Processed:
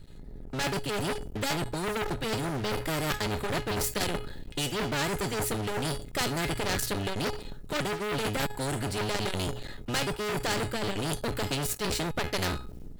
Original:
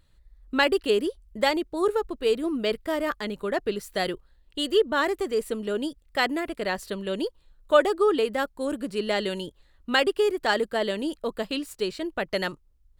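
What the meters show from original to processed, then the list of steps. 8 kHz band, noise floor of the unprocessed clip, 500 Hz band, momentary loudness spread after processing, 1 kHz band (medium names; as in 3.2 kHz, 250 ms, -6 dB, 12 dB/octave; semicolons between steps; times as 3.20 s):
+9.0 dB, -61 dBFS, -8.5 dB, 4 LU, -4.0 dB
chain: octave divider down 1 oct, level +3 dB; bass shelf 300 Hz +10.5 dB; feedback comb 420 Hz, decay 0.24 s, harmonics all, mix 80%; reverse; compression 16:1, threshold -37 dBFS, peak gain reduction 21.5 dB; reverse; dynamic bell 2.4 kHz, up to -4 dB, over -59 dBFS, Q 0.77; hum notches 60/120 Hz; waveshaping leveller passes 3; band-stop 1.1 kHz, Q 8.8; level rider gain up to 14 dB; spectrum-flattening compressor 2:1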